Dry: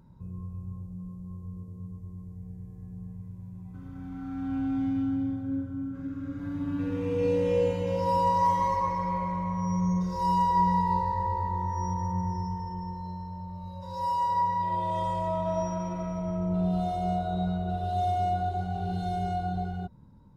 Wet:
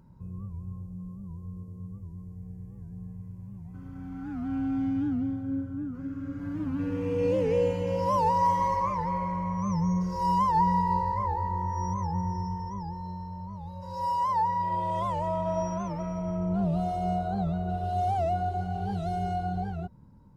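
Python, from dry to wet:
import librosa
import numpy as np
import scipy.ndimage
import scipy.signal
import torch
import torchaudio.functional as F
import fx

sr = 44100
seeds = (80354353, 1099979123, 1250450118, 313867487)

y = fx.notch(x, sr, hz=3700.0, q=6.5)
y = fx.record_warp(y, sr, rpm=78.0, depth_cents=160.0)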